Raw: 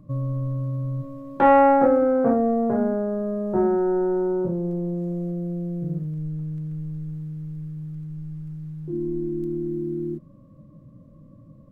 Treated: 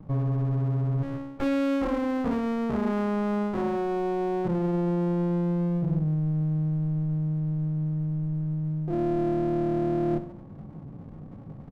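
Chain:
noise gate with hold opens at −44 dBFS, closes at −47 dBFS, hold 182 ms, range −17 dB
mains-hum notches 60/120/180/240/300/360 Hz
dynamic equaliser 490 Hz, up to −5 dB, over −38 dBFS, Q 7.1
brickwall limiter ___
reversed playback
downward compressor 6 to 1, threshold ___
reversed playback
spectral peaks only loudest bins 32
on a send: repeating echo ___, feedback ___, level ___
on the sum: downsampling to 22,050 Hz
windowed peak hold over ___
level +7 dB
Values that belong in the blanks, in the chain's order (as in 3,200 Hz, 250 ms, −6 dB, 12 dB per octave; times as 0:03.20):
−9.5 dBFS, −29 dBFS, 66 ms, 56%, −15 dB, 33 samples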